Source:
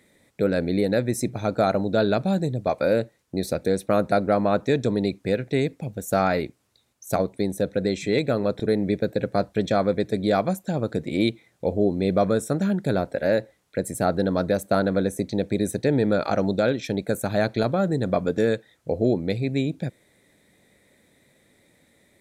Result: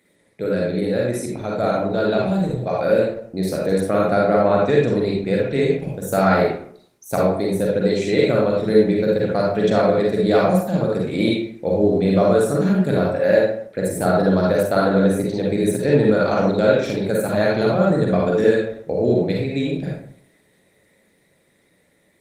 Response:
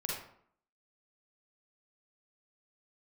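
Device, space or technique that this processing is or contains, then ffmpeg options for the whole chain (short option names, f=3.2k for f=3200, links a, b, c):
far-field microphone of a smart speaker: -filter_complex "[0:a]asettb=1/sr,asplit=3[a][b][c];[a]atrim=end=3.804[d];[b]atrim=start=3.8:end=5.73,asetpts=PTS-STARTPTS,afade=t=in:d=0.004:c=qsin,afade=t=out:st=1.926:d=0.004:c=qsin,highshelf=f=6k:g=-4.5[e];[c]atrim=start=5.726[f];[d][e]acrossfade=d=0.004:c1=hsin:c2=qsin[g];[g][f]acrossfade=d=0.004:c1=qsin:c2=hsin[h];[1:a]atrim=start_sample=2205[i];[h][i]afir=irnorm=-1:irlink=0,highpass=f=120:p=1,dynaudnorm=f=900:g=7:m=13dB,volume=-1dB" -ar 48000 -c:a libopus -b:a 24k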